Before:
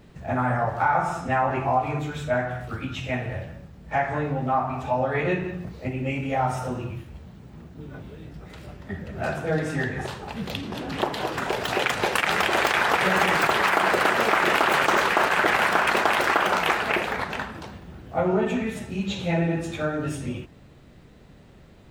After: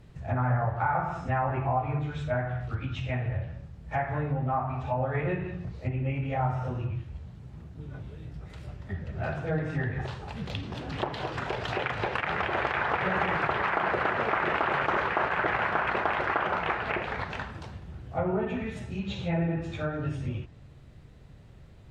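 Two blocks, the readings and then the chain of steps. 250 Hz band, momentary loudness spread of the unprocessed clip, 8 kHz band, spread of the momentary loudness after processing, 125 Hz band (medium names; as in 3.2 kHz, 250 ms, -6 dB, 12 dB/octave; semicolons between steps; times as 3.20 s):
-5.5 dB, 17 LU, under -20 dB, 14 LU, +0.5 dB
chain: resonant low shelf 160 Hz +6.5 dB, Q 1.5; low-pass that closes with the level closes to 2.2 kHz, closed at -19.5 dBFS; trim -5.5 dB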